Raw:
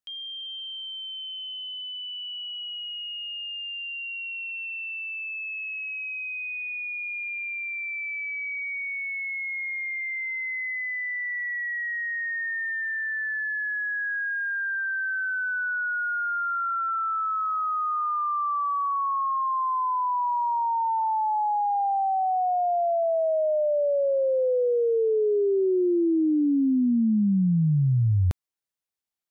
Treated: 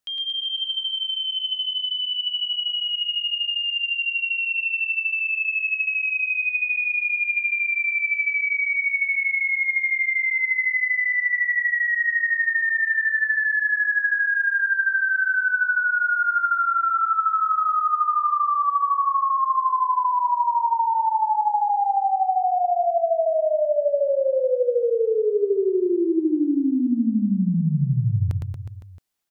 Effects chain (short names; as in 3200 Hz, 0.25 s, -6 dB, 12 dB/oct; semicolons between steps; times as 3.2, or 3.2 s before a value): compressor 10:1, threshold -29 dBFS, peak gain reduction 9.5 dB; on a send: reverse bouncing-ball echo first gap 0.11 s, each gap 1.1×, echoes 5; on the sum: gain +7.5 dB